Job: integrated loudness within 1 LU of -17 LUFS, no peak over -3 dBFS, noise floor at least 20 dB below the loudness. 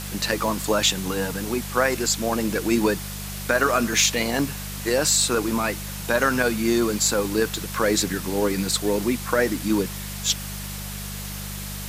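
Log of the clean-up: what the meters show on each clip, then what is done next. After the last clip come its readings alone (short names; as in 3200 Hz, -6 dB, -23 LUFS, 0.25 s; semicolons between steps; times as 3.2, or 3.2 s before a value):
hum 50 Hz; harmonics up to 200 Hz; hum level -32 dBFS; noise floor -33 dBFS; noise floor target -43 dBFS; loudness -23.0 LUFS; peak -4.5 dBFS; loudness target -17.0 LUFS
-> de-hum 50 Hz, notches 4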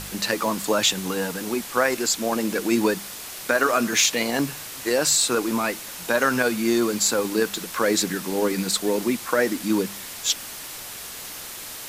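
hum none; noise floor -37 dBFS; noise floor target -43 dBFS
-> denoiser 6 dB, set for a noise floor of -37 dBFS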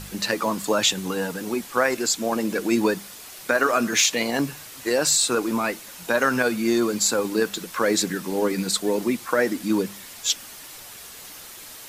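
noise floor -42 dBFS; noise floor target -43 dBFS
-> denoiser 6 dB, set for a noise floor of -42 dBFS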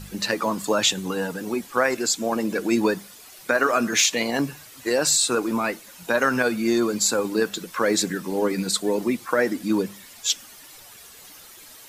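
noise floor -46 dBFS; loudness -23.0 LUFS; peak -5.5 dBFS; loudness target -17.0 LUFS
-> gain +6 dB; limiter -3 dBFS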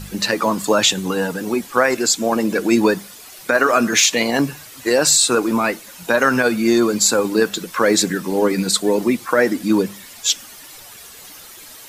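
loudness -17.5 LUFS; peak -3.0 dBFS; noise floor -40 dBFS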